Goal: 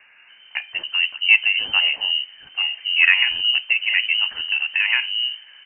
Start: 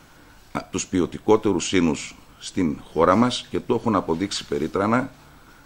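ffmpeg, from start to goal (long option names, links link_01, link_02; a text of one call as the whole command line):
ffmpeg -i in.wav -filter_complex "[0:a]acrossover=split=250[link_01][link_02];[link_01]adelay=280[link_03];[link_03][link_02]amix=inputs=2:normalize=0,lowpass=frequency=2600:width_type=q:width=0.5098,lowpass=frequency=2600:width_type=q:width=0.6013,lowpass=frequency=2600:width_type=q:width=0.9,lowpass=frequency=2600:width_type=q:width=2.563,afreqshift=-3100,crystalizer=i=7:c=0,volume=-6dB" out.wav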